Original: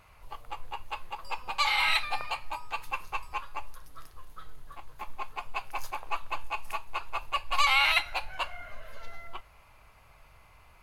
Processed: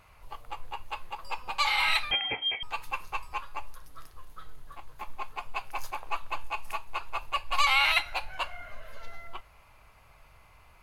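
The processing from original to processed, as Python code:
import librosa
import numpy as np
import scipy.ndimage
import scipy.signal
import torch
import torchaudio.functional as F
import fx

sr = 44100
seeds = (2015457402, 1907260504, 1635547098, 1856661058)

y = fx.freq_invert(x, sr, carrier_hz=3200, at=(2.11, 2.63))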